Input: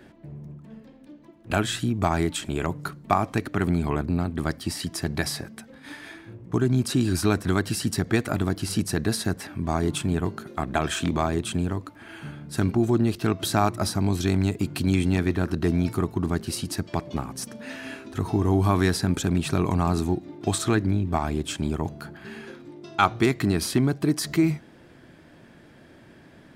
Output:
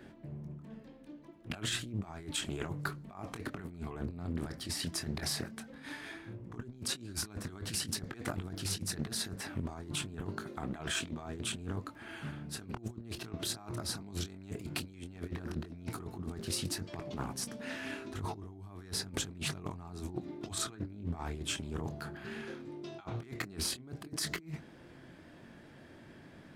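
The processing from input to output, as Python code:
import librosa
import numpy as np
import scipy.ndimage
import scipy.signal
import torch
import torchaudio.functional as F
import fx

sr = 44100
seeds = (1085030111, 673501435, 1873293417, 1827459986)

y = fx.over_compress(x, sr, threshold_db=-29.0, ratio=-0.5)
y = fx.chorus_voices(y, sr, voices=2, hz=0.11, base_ms=23, depth_ms=3.0, mix_pct=25)
y = fx.doppler_dist(y, sr, depth_ms=0.43)
y = y * librosa.db_to_amplitude(-7.0)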